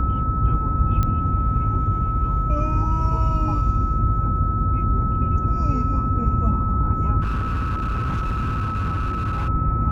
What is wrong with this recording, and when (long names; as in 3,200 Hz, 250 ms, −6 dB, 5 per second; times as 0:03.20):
whistle 1,300 Hz −25 dBFS
0:01.03: click −11 dBFS
0:07.22–0:09.49: clipping −20 dBFS